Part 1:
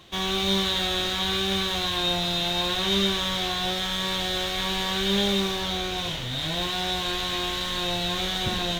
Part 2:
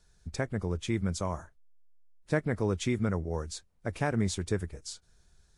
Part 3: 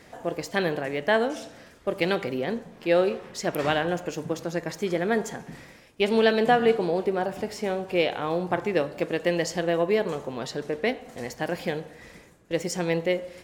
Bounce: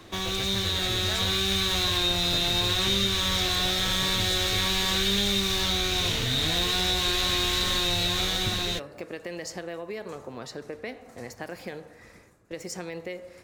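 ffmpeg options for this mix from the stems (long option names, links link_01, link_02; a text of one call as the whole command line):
ffmpeg -i stem1.wav -i stem2.wav -i stem3.wav -filter_complex "[0:a]equalizer=frequency=280:width_type=o:width=1.1:gain=7,dynaudnorm=framelen=380:gausssize=7:maxgain=11.5dB,volume=0.5dB[link_01];[1:a]volume=0dB[link_02];[2:a]alimiter=limit=-16.5dB:level=0:latency=1,volume=-4dB[link_03];[link_01][link_02][link_03]amix=inputs=3:normalize=0,equalizer=frequency=100:width_type=o:width=0.33:gain=8,equalizer=frequency=160:width_type=o:width=0.33:gain=-5,equalizer=frequency=1250:width_type=o:width=0.33:gain=4,equalizer=frequency=3150:width_type=o:width=0.33:gain=-7,acrossover=split=110|2000[link_04][link_05][link_06];[link_04]acompressor=threshold=-32dB:ratio=4[link_07];[link_05]acompressor=threshold=-34dB:ratio=4[link_08];[link_06]acompressor=threshold=-24dB:ratio=4[link_09];[link_07][link_08][link_09]amix=inputs=3:normalize=0" out.wav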